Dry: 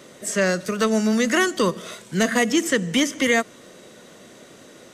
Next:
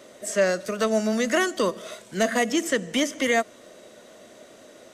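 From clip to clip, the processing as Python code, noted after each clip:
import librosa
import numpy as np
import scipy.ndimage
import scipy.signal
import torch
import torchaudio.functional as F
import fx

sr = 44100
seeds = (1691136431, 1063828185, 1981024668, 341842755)

y = fx.graphic_eq_31(x, sr, hz=(100, 160, 630), db=(-4, -11, 9))
y = y * librosa.db_to_amplitude(-4.0)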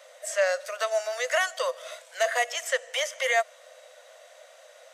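y = scipy.signal.sosfilt(scipy.signal.cheby1(6, 3, 500.0, 'highpass', fs=sr, output='sos'), x)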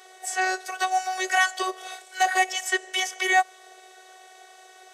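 y = fx.robotise(x, sr, hz=374.0)
y = y * librosa.db_to_amplitude(5.5)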